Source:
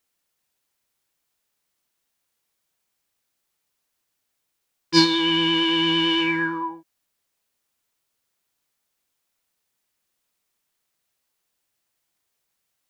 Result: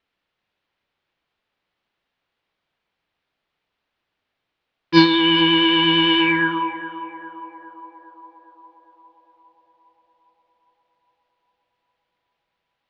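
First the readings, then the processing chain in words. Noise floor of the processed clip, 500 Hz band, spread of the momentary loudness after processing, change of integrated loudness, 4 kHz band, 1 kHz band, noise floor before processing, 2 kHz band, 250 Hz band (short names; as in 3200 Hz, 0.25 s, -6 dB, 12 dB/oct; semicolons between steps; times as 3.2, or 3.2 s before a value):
-80 dBFS, +4.5 dB, 17 LU, +3.5 dB, +3.5 dB, +6.0 dB, -77 dBFS, +5.0 dB, +4.5 dB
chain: LPF 3600 Hz 24 dB/oct; on a send: narrowing echo 0.406 s, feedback 76%, band-pass 650 Hz, level -9 dB; on the sum: gain +5 dB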